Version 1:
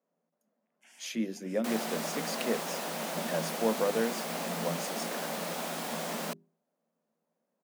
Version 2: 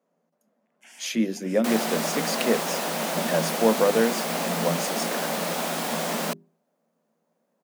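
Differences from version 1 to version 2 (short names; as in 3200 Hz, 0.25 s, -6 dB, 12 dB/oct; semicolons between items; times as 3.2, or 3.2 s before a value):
speech +8.5 dB; first sound +9.0 dB; second sound +8.0 dB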